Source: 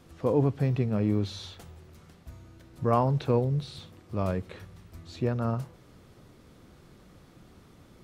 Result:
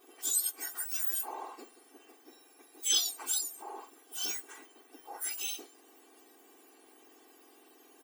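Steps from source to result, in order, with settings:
frequency axis turned over on the octave scale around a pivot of 1,900 Hz
comb filter 2.6 ms, depth 93%
level −1.5 dB

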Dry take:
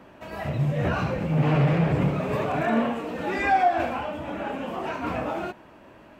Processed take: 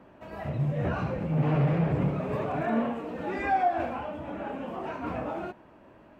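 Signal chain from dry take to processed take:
high-shelf EQ 2,100 Hz −9 dB
level −3.5 dB

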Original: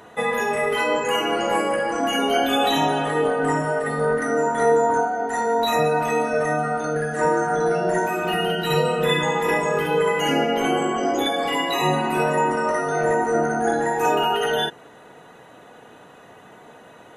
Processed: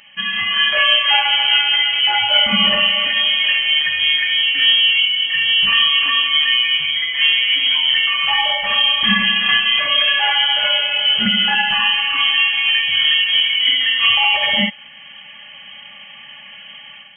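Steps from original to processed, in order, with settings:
automatic gain control gain up to 9 dB
in parallel at −11 dB: log-companded quantiser 4 bits
on the sum: Chebyshev high-pass with heavy ripple 470 Hz, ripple 3 dB
voice inversion scrambler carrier 3,700 Hz

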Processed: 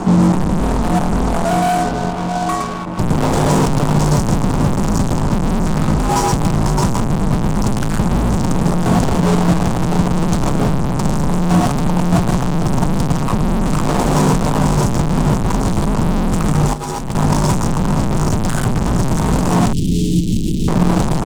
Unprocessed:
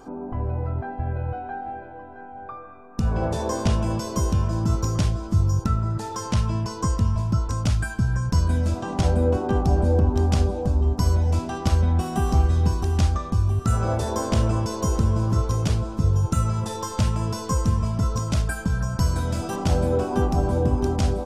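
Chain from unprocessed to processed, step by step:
spectral tilt −2 dB per octave
single-tap delay 114 ms −3.5 dB
fuzz pedal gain 39 dB, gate −46 dBFS
graphic EQ with 10 bands 250 Hz +12 dB, 1,000 Hz +7 dB, 2,000 Hz −3 dB, 8,000 Hz +9 dB
frequency shifter −70 Hz
0:16.73–0:17.15: compressor whose output falls as the input rises −15 dBFS, ratio −0.5
0:19.73–0:20.68: Chebyshev band-stop filter 340–3,100 Hz, order 3
level −5 dB

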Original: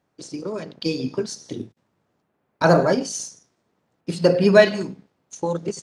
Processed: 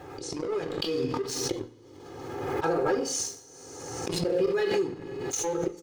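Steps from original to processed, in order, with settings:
high-pass filter 59 Hz
high-shelf EQ 2,300 Hz −9 dB
comb filter 2.4 ms, depth 95%
dynamic equaliser 430 Hz, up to +3 dB, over −23 dBFS, Q 2.5
volume swells 596 ms
leveller curve on the samples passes 2
downward compressor 6 to 1, threshold −33 dBFS, peak gain reduction 17.5 dB
coupled-rooms reverb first 0.52 s, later 2.1 s, from −18 dB, DRR 6.5 dB
background raised ahead of every attack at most 33 dB per second
level +5.5 dB

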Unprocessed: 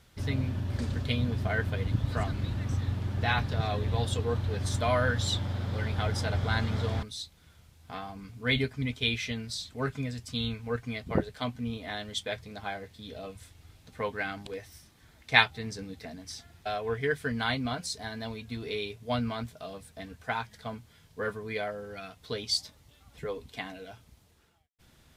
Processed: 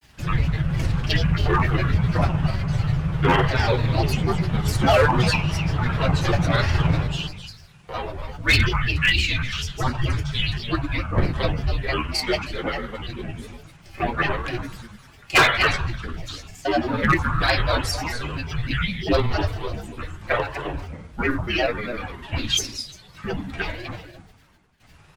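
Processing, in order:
single-tap delay 259 ms −9.5 dB
convolution reverb RT60 0.70 s, pre-delay 3 ms, DRR −2 dB
granular cloud, spray 13 ms, pitch spread up and down by 7 semitones
frequency shifter −240 Hz
gain into a clipping stage and back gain 16 dB
level +5.5 dB

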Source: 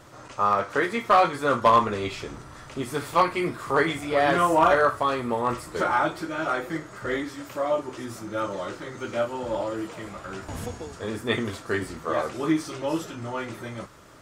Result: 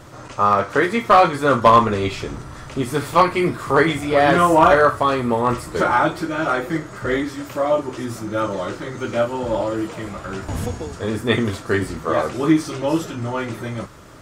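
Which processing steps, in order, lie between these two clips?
low-shelf EQ 270 Hz +5.5 dB
level +5.5 dB

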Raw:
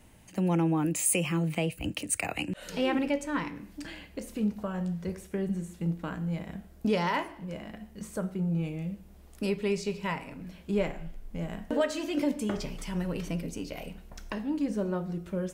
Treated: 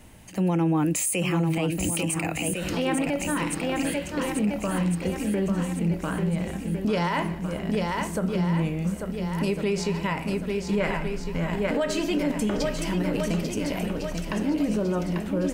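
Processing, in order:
0:10.80–0:11.49: parametric band 1,500 Hz +11 dB 1.4 octaves
feedback echo with a long and a short gap by turns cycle 1,404 ms, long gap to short 1.5 to 1, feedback 41%, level −7 dB
brickwall limiter −24 dBFS, peak gain reduction 9.5 dB
level +7 dB

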